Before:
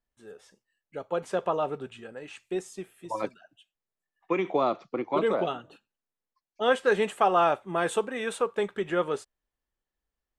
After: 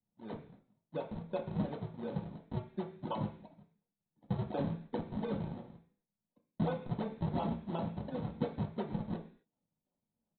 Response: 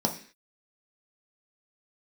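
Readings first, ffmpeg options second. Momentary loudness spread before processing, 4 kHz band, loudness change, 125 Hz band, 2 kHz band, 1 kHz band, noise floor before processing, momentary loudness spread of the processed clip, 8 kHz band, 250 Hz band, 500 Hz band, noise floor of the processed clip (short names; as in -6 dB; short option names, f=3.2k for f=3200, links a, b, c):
17 LU, -15.0 dB, -11.0 dB, +6.5 dB, -20.5 dB, -15.0 dB, under -85 dBFS, 11 LU, under -35 dB, -2.5 dB, -14.0 dB, under -85 dBFS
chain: -filter_complex "[0:a]lowpass=2.4k,equalizer=f=600:t=o:w=1.3:g=4,acompressor=threshold=-37dB:ratio=5,aresample=8000,acrusher=samples=18:mix=1:aa=0.000001:lfo=1:lforange=28.8:lforate=2.8,aresample=44100,flanger=delay=4.1:depth=4:regen=82:speed=0.79:shape=sinusoidal[a];[1:a]atrim=start_sample=2205,asetrate=42336,aresample=44100[b];[a][b]afir=irnorm=-1:irlink=0,volume=-6.5dB"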